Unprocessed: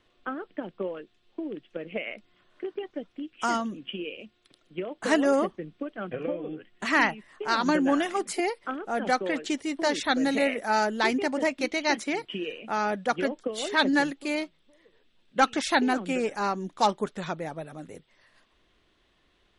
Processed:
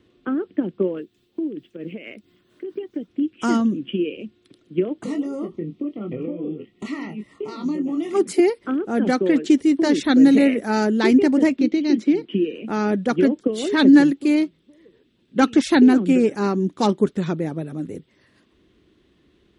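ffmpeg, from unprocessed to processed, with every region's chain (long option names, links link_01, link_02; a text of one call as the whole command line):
ffmpeg -i in.wav -filter_complex "[0:a]asettb=1/sr,asplit=3[link_01][link_02][link_03];[link_01]atrim=end=0.984[link_04];[link_02]atrim=start=0.98:end=3.08,asetpts=PTS-STARTPTS,afade=type=in:duration=0.004:curve=qsin,afade=type=out:start_time=2.096:duration=0.004:curve=qsin,acompressor=threshold=-36dB:ratio=2.5:attack=3.2:release=140:knee=1:detection=peak,aemphasis=mode=production:type=50fm,tremolo=f=4.5:d=0.49[link_05];[link_03]atrim=start=3.076[link_06];[link_04][link_05]acrossfade=duration=0.004:curve1=hsin:curve2=qsin[link_07];[link_07][link_06]acrossfade=duration=0.004:curve1=qsin:curve2=hsin,asettb=1/sr,asplit=3[link_08][link_09][link_10];[link_08]atrim=end=5.034[link_11];[link_09]atrim=start=5.03:end=8.13,asetpts=PTS-STARTPTS,afade=type=in:duration=0.004:curve=qsin,afade=type=out:start_time=3.096:duration=0.004:curve=qsin,acompressor=threshold=-37dB:ratio=4:attack=3.2:release=140:knee=1:detection=peak,asuperstop=centerf=1600:order=20:qfactor=3.9,asplit=2[link_12][link_13];[link_13]adelay=24,volume=-6dB[link_14];[link_12][link_14]amix=inputs=2:normalize=0,atrim=end_sample=136710[link_15];[link_10]atrim=start=8.126[link_16];[link_11][link_15]acrossfade=duration=0.004:curve1=hsin:curve2=qsin[link_17];[link_17][link_16]acrossfade=duration=0.004:curve1=qsin:curve2=hsin,asettb=1/sr,asplit=3[link_18][link_19][link_20];[link_18]atrim=end=11.564[link_21];[link_19]atrim=start=11.56:end=12.55,asetpts=PTS-STARTPTS,afade=type=in:duration=0.004:curve=qsin,afade=type=out:start_time=0.986:duration=0.004:curve=qsin,lowpass=4000,lowshelf=frequency=150:width_type=q:width=1.5:gain=-7,acrossover=split=430|3000[link_22][link_23][link_24];[link_23]acompressor=threshold=-45dB:ratio=3:attack=3.2:release=140:knee=2.83:detection=peak[link_25];[link_22][link_25][link_24]amix=inputs=3:normalize=0[link_26];[link_20]atrim=start=12.546[link_27];[link_21][link_26]acrossfade=duration=0.004:curve1=hsin:curve2=qsin[link_28];[link_28][link_27]acrossfade=duration=0.004:curve1=qsin:curve2=hsin,highpass=67,lowshelf=frequency=490:width_type=q:width=1.5:gain=10.5,volume=1.5dB" out.wav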